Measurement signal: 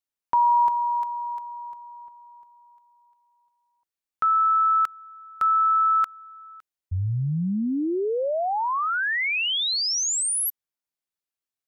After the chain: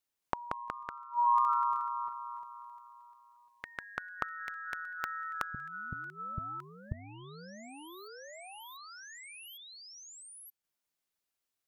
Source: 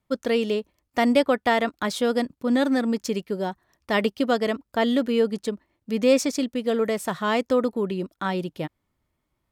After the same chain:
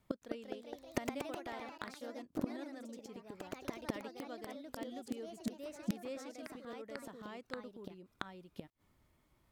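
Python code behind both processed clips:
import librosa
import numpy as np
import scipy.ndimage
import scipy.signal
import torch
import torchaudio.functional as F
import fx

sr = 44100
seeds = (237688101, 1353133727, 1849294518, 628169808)

y = fx.gate_flip(x, sr, shuts_db=-25.0, range_db=-30)
y = fx.echo_pitch(y, sr, ms=218, semitones=2, count=3, db_per_echo=-3.0)
y = y * librosa.db_to_amplitude(3.5)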